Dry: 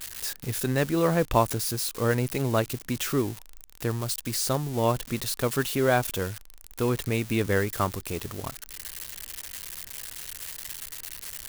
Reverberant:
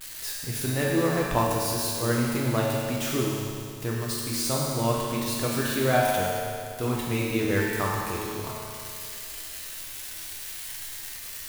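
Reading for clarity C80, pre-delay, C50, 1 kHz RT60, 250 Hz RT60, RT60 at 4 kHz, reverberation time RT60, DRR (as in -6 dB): 0.0 dB, 9 ms, -1.5 dB, 2.4 s, 2.4 s, 2.4 s, 2.4 s, -4.5 dB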